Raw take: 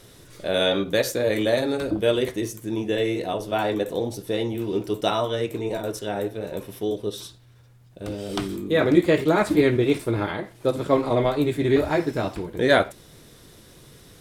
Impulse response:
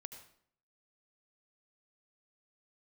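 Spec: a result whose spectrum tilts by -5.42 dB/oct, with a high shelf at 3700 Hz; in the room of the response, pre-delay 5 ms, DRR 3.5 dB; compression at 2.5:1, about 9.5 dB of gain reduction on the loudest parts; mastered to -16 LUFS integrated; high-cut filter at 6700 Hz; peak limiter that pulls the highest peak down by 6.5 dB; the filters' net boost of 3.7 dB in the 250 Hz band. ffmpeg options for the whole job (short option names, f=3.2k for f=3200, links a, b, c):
-filter_complex "[0:a]lowpass=6.7k,equalizer=f=250:t=o:g=5,highshelf=f=3.7k:g=-5,acompressor=threshold=-23dB:ratio=2.5,alimiter=limit=-17.5dB:level=0:latency=1,asplit=2[a][b];[1:a]atrim=start_sample=2205,adelay=5[c];[b][c]afir=irnorm=-1:irlink=0,volume=1.5dB[d];[a][d]amix=inputs=2:normalize=0,volume=11dB"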